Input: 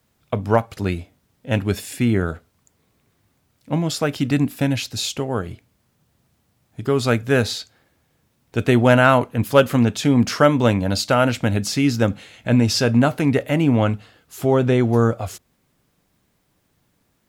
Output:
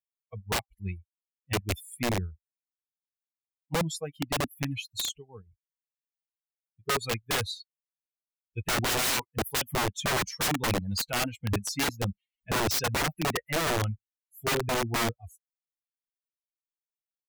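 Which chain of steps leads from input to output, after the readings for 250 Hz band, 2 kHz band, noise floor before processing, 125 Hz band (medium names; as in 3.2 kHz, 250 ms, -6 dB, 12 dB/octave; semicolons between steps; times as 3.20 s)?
-16.5 dB, -7.0 dB, -67 dBFS, -13.5 dB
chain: expander on every frequency bin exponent 3; integer overflow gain 22 dB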